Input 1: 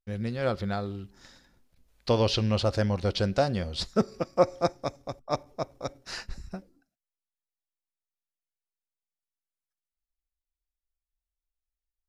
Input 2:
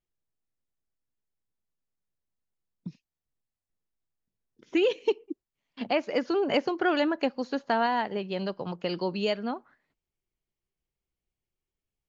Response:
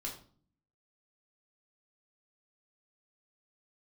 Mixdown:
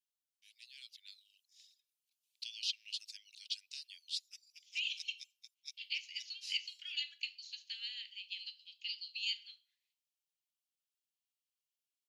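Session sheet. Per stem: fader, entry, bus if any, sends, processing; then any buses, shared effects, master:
-6.0 dB, 0.35 s, no send, reverb removal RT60 0.58 s
-3.0 dB, 0.00 s, send -5 dB, none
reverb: on, RT60 0.45 s, pre-delay 3 ms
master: steep high-pass 2.6 kHz 48 dB/octave

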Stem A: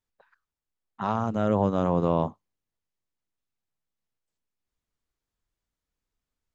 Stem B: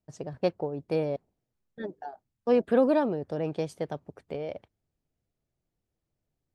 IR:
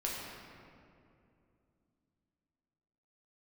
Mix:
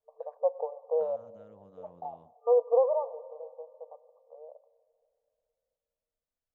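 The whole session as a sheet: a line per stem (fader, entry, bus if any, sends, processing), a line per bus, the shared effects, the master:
-11.5 dB, 0.00 s, no send, compression 3:1, threshold -34 dBFS, peak gain reduction 12 dB; auto duck -10 dB, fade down 0.85 s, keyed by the second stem
2.81 s 0 dB -> 3.27 s -13 dB, 0.00 s, send -18.5 dB, FFT band-pass 450–1200 Hz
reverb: on, RT60 2.6 s, pre-delay 6 ms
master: none

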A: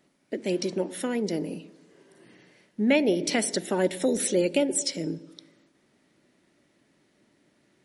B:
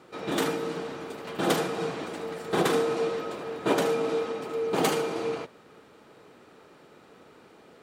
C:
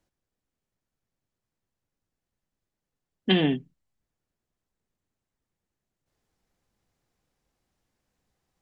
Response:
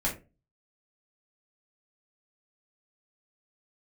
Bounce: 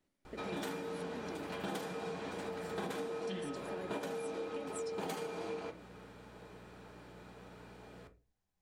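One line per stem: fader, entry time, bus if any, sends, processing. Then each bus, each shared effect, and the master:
-16.0 dB, 0.00 s, no send, none
-4.0 dB, 0.25 s, send -10.5 dB, hum 60 Hz, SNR 25 dB
-13.5 dB, 0.00 s, send -10 dB, none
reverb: on, RT60 0.30 s, pre-delay 5 ms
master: compression 6:1, threshold -38 dBFS, peak gain reduction 17 dB

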